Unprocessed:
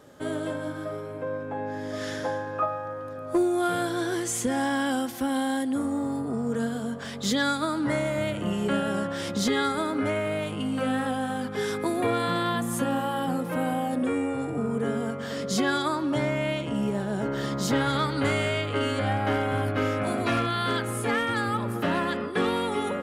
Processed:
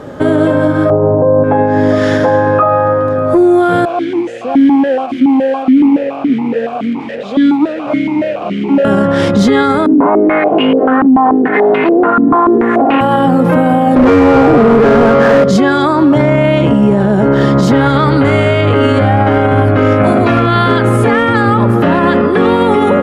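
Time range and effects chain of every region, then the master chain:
0.9–1.44 synth low-pass 830 Hz, resonance Q 2.5 + tilt -2 dB/oct
3.85–8.85 delta modulation 64 kbps, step -25.5 dBFS + vowel sequencer 7.1 Hz
9.86–13.01 minimum comb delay 2.8 ms + steep high-pass 160 Hz + stepped low-pass 6.9 Hz 260–2700 Hz
13.96–15.44 median filter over 15 samples + overdrive pedal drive 25 dB, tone 6300 Hz, clips at -15.5 dBFS
whole clip: LPF 1200 Hz 6 dB/oct; maximiser +26 dB; gain -1 dB

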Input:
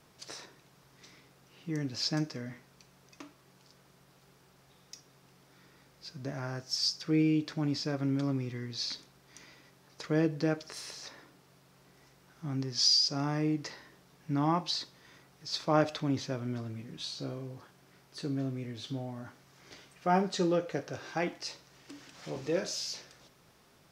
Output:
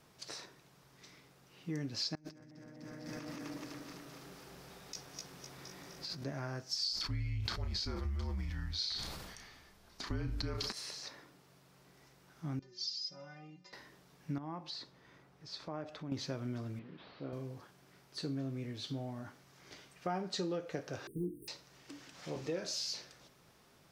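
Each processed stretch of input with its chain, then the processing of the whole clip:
2.15–6.24 regenerating reverse delay 0.127 s, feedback 73%, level -2 dB + delay with a stepping band-pass 0.18 s, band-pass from 230 Hz, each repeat 1.4 oct, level -1 dB + negative-ratio compressor -47 dBFS
6.84–10.72 doubler 33 ms -9 dB + frequency shift -200 Hz + sustainer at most 32 dB/s
12.59–13.73 steep low-pass 7100 Hz 48 dB/oct + metallic resonator 180 Hz, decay 0.38 s, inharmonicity 0.008
14.38–16.12 high shelf 3100 Hz -11.5 dB + compressor 2:1, threshold -45 dBFS
16.79–17.33 delta modulation 32 kbps, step -49.5 dBFS + HPF 220 Hz 6 dB/oct + air absorption 390 m
21.07–21.48 G.711 law mismatch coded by mu + brick-wall FIR band-stop 470–8400 Hz + doubler 17 ms -3 dB
whole clip: dynamic EQ 4300 Hz, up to +6 dB, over -54 dBFS, Q 4.9; compressor 6:1, threshold -32 dBFS; gain -2 dB

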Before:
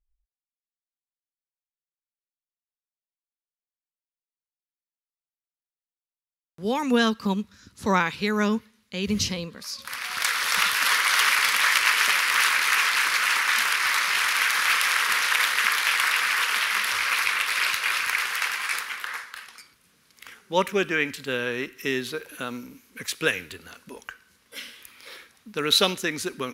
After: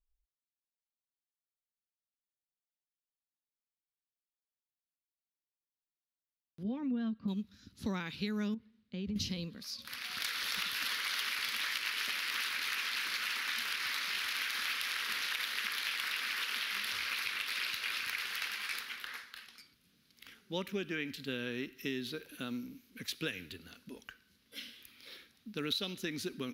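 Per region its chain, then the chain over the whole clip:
6.63–7.28 tape spacing loss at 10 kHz 44 dB + notch comb 430 Hz
8.54–9.16 LPF 1200 Hz 6 dB/oct + compressor, threshold -29 dBFS
whole clip: ten-band EQ 250 Hz +4 dB, 500 Hz -5 dB, 1000 Hz -10 dB, 2000 Hz -4 dB, 4000 Hz +4 dB, 8000 Hz -11 dB; compressor, threshold -27 dBFS; gain -5.5 dB

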